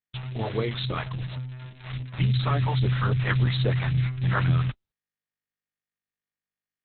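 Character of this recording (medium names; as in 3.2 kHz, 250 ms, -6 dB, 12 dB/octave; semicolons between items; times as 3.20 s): a quantiser's noise floor 6-bit, dither none; phasing stages 2, 3.6 Hz, lowest notch 280–1100 Hz; Opus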